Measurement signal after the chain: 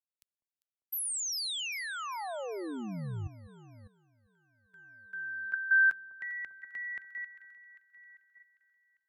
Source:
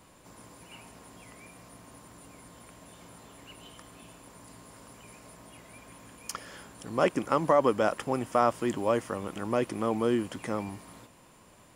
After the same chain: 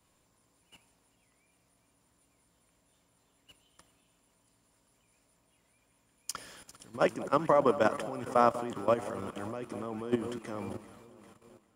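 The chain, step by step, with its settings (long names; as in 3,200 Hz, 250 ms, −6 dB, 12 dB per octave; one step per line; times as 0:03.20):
delay that swaps between a low-pass and a high-pass 199 ms, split 1,100 Hz, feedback 77%, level −10 dB
output level in coarse steps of 12 dB
multiband upward and downward expander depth 40%
level −2 dB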